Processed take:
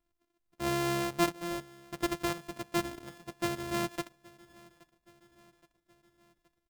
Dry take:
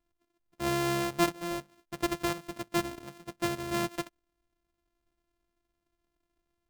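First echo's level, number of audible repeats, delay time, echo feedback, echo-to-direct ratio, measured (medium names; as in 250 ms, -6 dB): -23.5 dB, 3, 822 ms, 55%, -22.0 dB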